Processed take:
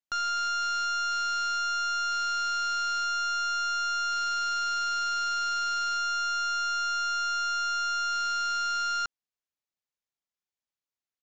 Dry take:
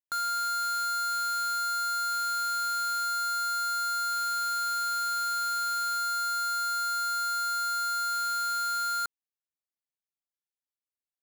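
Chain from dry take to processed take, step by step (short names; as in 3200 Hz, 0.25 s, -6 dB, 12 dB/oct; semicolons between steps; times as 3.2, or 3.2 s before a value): tracing distortion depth 0.21 ms; downsampling 16000 Hz; gain +1 dB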